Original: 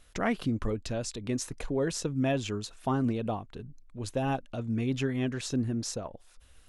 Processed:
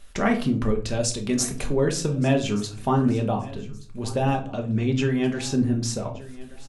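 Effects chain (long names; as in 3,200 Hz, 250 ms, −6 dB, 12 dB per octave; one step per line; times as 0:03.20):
0:00.88–0:01.70: high-shelf EQ 4,500 Hz +8.5 dB
0:04.35–0:05.05: linear-phase brick-wall low-pass 9,000 Hz
repeating echo 1,175 ms, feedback 25%, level −19.5 dB
rectangular room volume 310 cubic metres, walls furnished, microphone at 1.2 metres
level +5 dB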